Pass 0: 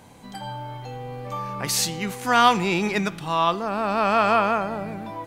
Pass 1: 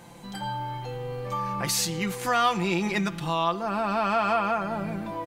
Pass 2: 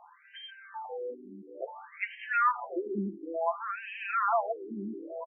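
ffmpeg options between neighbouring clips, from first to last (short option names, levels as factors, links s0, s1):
-af "aecho=1:1:5.8:0.58,acompressor=threshold=0.0501:ratio=2"
-af "highpass=f=140:w=0.5412,highpass=f=140:w=1.3066,afftfilt=real='re*between(b*sr/1024,280*pow(2300/280,0.5+0.5*sin(2*PI*0.57*pts/sr))/1.41,280*pow(2300/280,0.5+0.5*sin(2*PI*0.57*pts/sr))*1.41)':imag='im*between(b*sr/1024,280*pow(2300/280,0.5+0.5*sin(2*PI*0.57*pts/sr))/1.41,280*pow(2300/280,0.5+0.5*sin(2*PI*0.57*pts/sr))*1.41)':win_size=1024:overlap=0.75"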